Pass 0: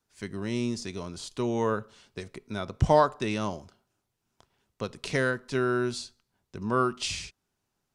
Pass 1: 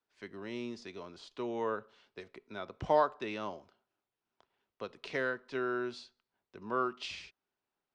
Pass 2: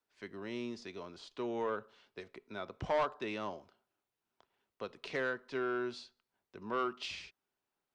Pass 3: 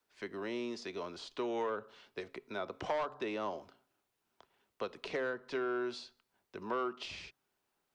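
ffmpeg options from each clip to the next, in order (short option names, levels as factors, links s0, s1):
-filter_complex "[0:a]acrossover=split=270 4500:gain=0.2 1 0.0708[s0][s1][s2];[s0][s1][s2]amix=inputs=3:normalize=0,volume=0.501"
-af "asoftclip=type=tanh:threshold=0.0531"
-filter_complex "[0:a]bandreject=f=136.5:t=h:w=4,bandreject=f=273:t=h:w=4,acrossover=split=280|1100[s0][s1][s2];[s0]acompressor=threshold=0.00112:ratio=4[s3];[s1]acompressor=threshold=0.00891:ratio=4[s4];[s2]acompressor=threshold=0.00316:ratio=4[s5];[s3][s4][s5]amix=inputs=3:normalize=0,volume=2"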